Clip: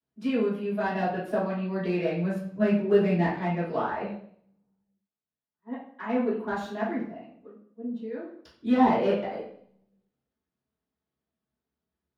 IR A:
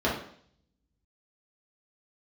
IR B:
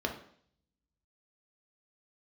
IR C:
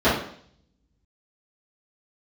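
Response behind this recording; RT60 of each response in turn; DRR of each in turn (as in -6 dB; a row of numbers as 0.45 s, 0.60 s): C; 0.60 s, 0.60 s, 0.60 s; -6.5 dB, 2.0 dB, -14.0 dB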